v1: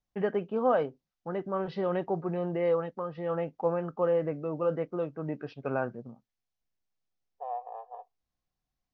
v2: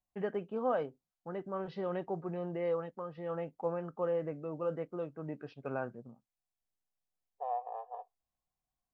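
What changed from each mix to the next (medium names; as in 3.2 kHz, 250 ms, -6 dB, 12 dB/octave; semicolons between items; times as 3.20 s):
first voice -6.5 dB; master: remove steep low-pass 6.4 kHz 48 dB/octave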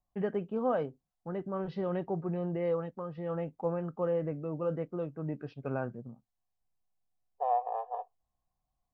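first voice: add bass shelf 240 Hz +10.5 dB; second voice +7.0 dB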